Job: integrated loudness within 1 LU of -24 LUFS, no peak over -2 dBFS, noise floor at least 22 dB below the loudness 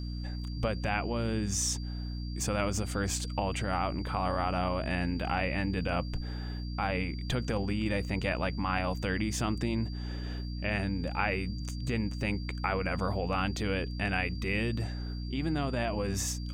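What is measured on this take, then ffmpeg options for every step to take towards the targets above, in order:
hum 60 Hz; harmonics up to 300 Hz; hum level -34 dBFS; steady tone 4700 Hz; tone level -49 dBFS; loudness -32.5 LUFS; peak -14.0 dBFS; loudness target -24.0 LUFS
-> -af "bandreject=f=60:t=h:w=6,bandreject=f=120:t=h:w=6,bandreject=f=180:t=h:w=6,bandreject=f=240:t=h:w=6,bandreject=f=300:t=h:w=6"
-af "bandreject=f=4.7k:w=30"
-af "volume=8.5dB"

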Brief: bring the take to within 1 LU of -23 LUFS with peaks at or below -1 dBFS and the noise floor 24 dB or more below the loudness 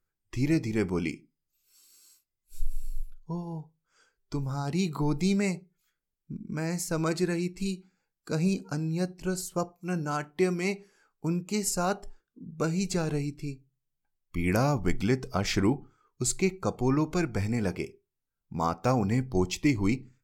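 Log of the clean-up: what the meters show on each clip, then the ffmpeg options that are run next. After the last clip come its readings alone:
loudness -30.0 LUFS; peak -10.0 dBFS; loudness target -23.0 LUFS
-> -af "volume=7dB"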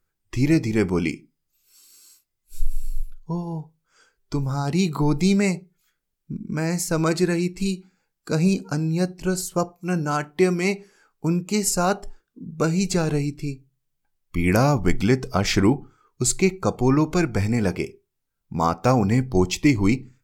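loudness -23.0 LUFS; peak -3.0 dBFS; noise floor -77 dBFS

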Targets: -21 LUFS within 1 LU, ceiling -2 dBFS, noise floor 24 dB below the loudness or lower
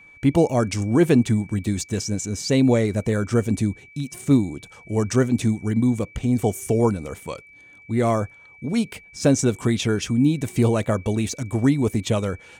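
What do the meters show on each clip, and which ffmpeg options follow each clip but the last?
steady tone 2300 Hz; tone level -46 dBFS; loudness -22.0 LUFS; peak -5.0 dBFS; loudness target -21.0 LUFS
-> -af "bandreject=f=2.3k:w=30"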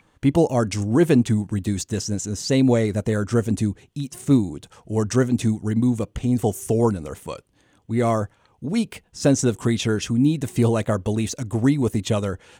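steady tone none; loudness -22.0 LUFS; peak -5.0 dBFS; loudness target -21.0 LUFS
-> -af "volume=1dB"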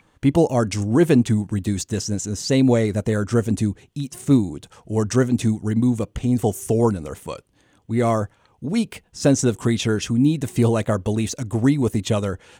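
loudness -21.0 LUFS; peak -4.0 dBFS; noise floor -60 dBFS

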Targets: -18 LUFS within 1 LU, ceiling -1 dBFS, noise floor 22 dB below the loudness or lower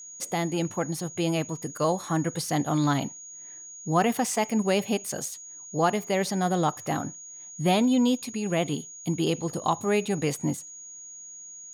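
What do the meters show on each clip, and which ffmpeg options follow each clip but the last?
steady tone 6700 Hz; tone level -41 dBFS; loudness -27.0 LUFS; peak -11.0 dBFS; loudness target -18.0 LUFS
-> -af "bandreject=f=6.7k:w=30"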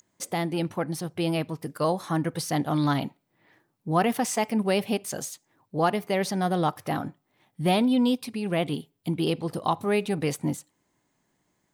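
steady tone none; loudness -27.0 LUFS; peak -11.0 dBFS; loudness target -18.0 LUFS
-> -af "volume=9dB"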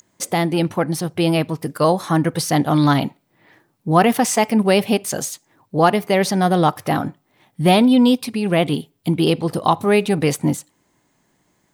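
loudness -18.0 LUFS; peak -2.0 dBFS; noise floor -65 dBFS

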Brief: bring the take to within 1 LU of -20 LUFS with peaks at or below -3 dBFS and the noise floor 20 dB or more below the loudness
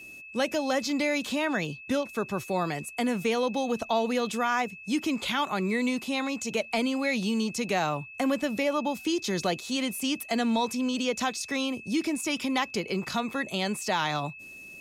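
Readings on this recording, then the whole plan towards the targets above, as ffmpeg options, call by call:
steady tone 2600 Hz; tone level -43 dBFS; loudness -28.5 LUFS; peak -15.5 dBFS; loudness target -20.0 LUFS
-> -af "bandreject=f=2.6k:w=30"
-af "volume=8.5dB"

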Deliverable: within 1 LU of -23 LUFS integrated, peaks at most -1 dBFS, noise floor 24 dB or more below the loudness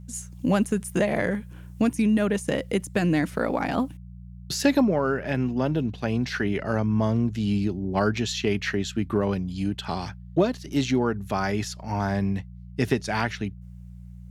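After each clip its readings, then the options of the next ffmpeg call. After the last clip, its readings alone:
hum 60 Hz; harmonics up to 180 Hz; hum level -39 dBFS; loudness -26.0 LUFS; peak -7.5 dBFS; loudness target -23.0 LUFS
-> -af "bandreject=f=60:t=h:w=4,bandreject=f=120:t=h:w=4,bandreject=f=180:t=h:w=4"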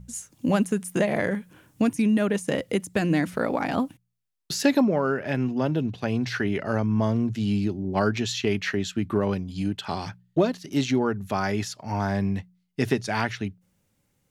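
hum none; loudness -26.0 LUFS; peak -7.5 dBFS; loudness target -23.0 LUFS
-> -af "volume=3dB"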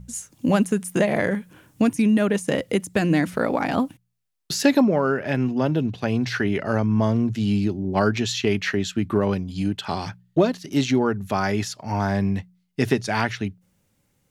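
loudness -23.0 LUFS; peak -4.5 dBFS; noise floor -69 dBFS

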